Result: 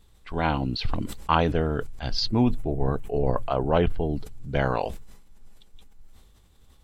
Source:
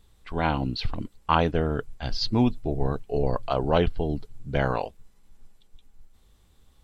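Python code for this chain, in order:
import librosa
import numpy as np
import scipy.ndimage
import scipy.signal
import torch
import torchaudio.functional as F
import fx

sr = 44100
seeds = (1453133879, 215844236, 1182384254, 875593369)

y = fx.peak_eq(x, sr, hz=4600.0, db=-10.5, octaves=0.94, at=(2.28, 4.14))
y = fx.sustainer(y, sr, db_per_s=52.0)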